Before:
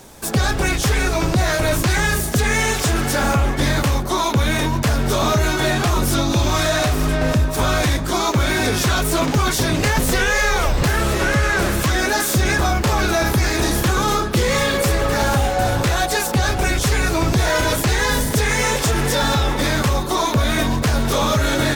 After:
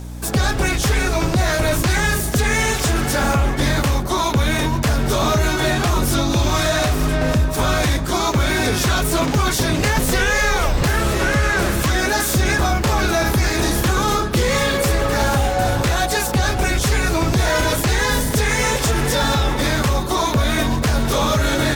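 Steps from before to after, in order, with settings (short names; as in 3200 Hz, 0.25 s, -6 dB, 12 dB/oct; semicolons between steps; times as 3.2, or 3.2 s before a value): hum 60 Hz, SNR 13 dB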